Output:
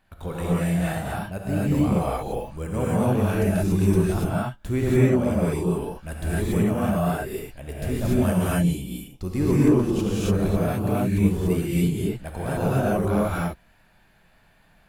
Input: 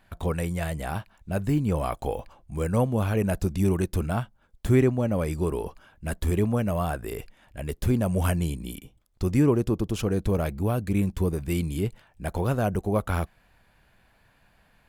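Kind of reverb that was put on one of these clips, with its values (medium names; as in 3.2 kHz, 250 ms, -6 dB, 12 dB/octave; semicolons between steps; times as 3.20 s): gated-style reverb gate 310 ms rising, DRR -8 dB; trim -5.5 dB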